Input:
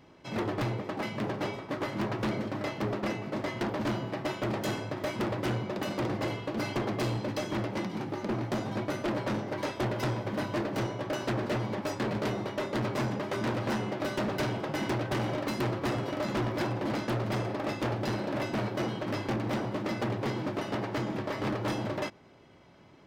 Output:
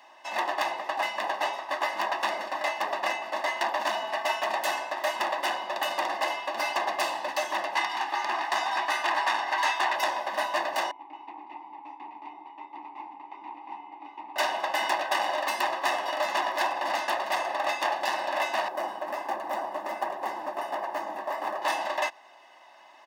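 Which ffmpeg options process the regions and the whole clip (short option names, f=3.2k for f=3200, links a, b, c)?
-filter_complex "[0:a]asettb=1/sr,asplit=3[a][b][c];[a]atrim=end=3.894[d];[b]atrim=start=3.89:end=4.53,asetpts=PTS-STARTPTS,afade=t=in:d=0.004:c=qsin,afade=t=out:st=0.636:d=0.004:c=qsin,aecho=1:1:4.5:0.52,atrim=end_sample=28224,volume=27.5dB,asoftclip=hard,volume=-27.5dB[e];[c]atrim=start=4.526[f];[d][e]acrossfade=d=0.004:c1=hsin:c2=qsin[g];[g][f]acrossfade=d=0.004:c1=qsin:c2=hsin,asettb=1/sr,asplit=3[h][i][j];[h]atrim=end=7.754[k];[i]atrim=start=7.75:end=9.96,asetpts=PTS-STARTPTS,afade=t=in:d=0.004:c=qsin,afade=t=out:st=2.206:d=0.004:c=qsin,equalizer=f=560:w=3.3:g=-11.5,asplit=2[l][m];[m]highpass=f=720:p=1,volume=12dB,asoftclip=type=tanh:threshold=-22.5dB[n];[l][n]amix=inputs=2:normalize=0,lowpass=f=4.8k:p=1,volume=-6dB,highpass=f=200:w=0.5412,highpass=f=200:w=1.3066[o];[j]atrim=start=9.956[p];[k][o]acrossfade=d=0.004:c1=hsin:c2=qsin[q];[q][p]acrossfade=d=0.004:c1=qsin:c2=hsin,asettb=1/sr,asplit=3[r][s][t];[r]atrim=end=10.914[u];[s]atrim=start=10.91:end=14.36,asetpts=PTS-STARTPTS,afade=t=in:d=0.004:c=qsin,afade=t=out:st=3.446:d=0.004:c=qsin,asplit=3[v][w][x];[v]bandpass=f=300:t=q:w=8,volume=0dB[y];[w]bandpass=f=870:t=q:w=8,volume=-6dB[z];[x]bandpass=f=2.24k:t=q:w=8,volume=-9dB[aa];[y][z][aa]amix=inputs=3:normalize=0,tremolo=f=190:d=0.182,aemphasis=mode=reproduction:type=75kf[ab];[t]atrim=start=14.356[ac];[u][ab]acrossfade=d=0.004:c1=hsin:c2=qsin[ad];[ad][ac]acrossfade=d=0.004:c1=qsin:c2=hsin,asettb=1/sr,asplit=3[ae][af][ag];[ae]atrim=end=18.684[ah];[af]atrim=start=18.68:end=21.62,asetpts=PTS-STARTPTS,afade=t=in:d=0.004:c=qsin,afade=t=out:st=2.936:d=0.004:c=qsin,equalizer=f=3.8k:w=0.43:g=-14.5,acontrast=38,flanger=delay=1.7:depth=8.5:regen=-62:speed=1.4:shape=sinusoidal[ai];[ag]atrim=start=21.616[aj];[ah][ai]acrossfade=d=0.004:c1=hsin:c2=qsin[ak];[ak][aj]acrossfade=d=0.004:c1=qsin:c2=hsin,highpass=f=510:w=0.5412,highpass=f=510:w=1.3066,aecho=1:1:1.1:0.91,volume=6dB"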